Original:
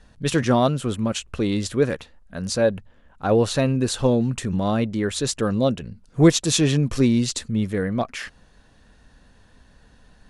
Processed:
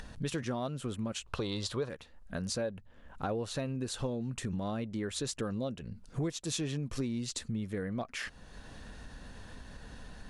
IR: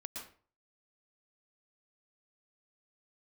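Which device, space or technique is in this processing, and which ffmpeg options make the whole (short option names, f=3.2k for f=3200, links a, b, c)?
upward and downward compression: -filter_complex "[0:a]asettb=1/sr,asplit=3[a][b][c];[a]atrim=end=1.264[d];[b]atrim=start=1.26:end=1.89,asetpts=PTS-STARTPTS,afade=t=in:d=0.004:c=qsin,afade=t=out:st=0.626:d=0.004:c=qsin,equalizer=f=125:t=o:w=1:g=4,equalizer=f=250:t=o:w=1:g=-5,equalizer=f=500:t=o:w=1:g=4,equalizer=f=1k:t=o:w=1:g=12,equalizer=f=2k:t=o:w=1:g=-3,equalizer=f=4k:t=o:w=1:g=11[e];[c]atrim=start=1.886[f];[d][e]acrossfade=d=0.004:c1=hsin:c2=qsin[g];[g][f]acrossfade=d=0.004:c1=qsin:c2=hsin,acompressor=mode=upward:threshold=-39dB:ratio=2.5,acompressor=threshold=-34dB:ratio=5"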